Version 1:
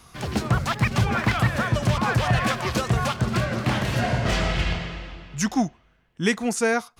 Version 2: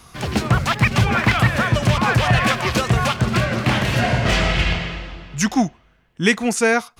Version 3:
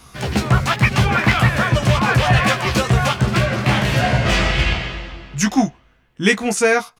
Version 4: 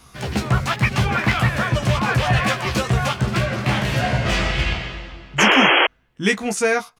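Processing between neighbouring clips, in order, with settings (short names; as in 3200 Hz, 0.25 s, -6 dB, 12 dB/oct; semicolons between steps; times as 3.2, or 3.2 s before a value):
dynamic EQ 2500 Hz, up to +4 dB, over -41 dBFS, Q 1.4; gain +4.5 dB
doubler 15 ms -4.5 dB
painted sound noise, 5.38–5.87, 280–3300 Hz -11 dBFS; gain -3.5 dB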